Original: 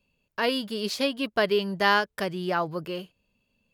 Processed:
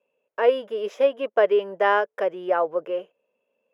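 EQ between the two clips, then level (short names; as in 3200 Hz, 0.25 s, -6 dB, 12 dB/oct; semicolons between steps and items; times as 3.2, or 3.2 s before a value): running mean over 10 samples; resonant high-pass 500 Hz, resonance Q 3.6; 0.0 dB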